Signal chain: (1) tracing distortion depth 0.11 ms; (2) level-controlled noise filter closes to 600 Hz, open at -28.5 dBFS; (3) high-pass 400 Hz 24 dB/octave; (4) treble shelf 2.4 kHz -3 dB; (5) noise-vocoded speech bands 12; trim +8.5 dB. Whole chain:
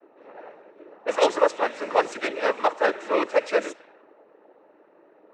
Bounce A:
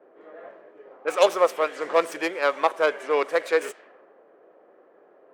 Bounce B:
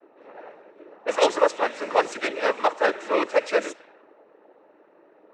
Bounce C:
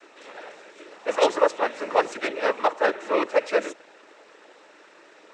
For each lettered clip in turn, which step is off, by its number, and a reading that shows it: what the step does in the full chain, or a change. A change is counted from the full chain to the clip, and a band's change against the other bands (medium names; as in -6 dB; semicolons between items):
5, 250 Hz band -2.5 dB; 4, 8 kHz band +2.0 dB; 2, momentary loudness spread change +13 LU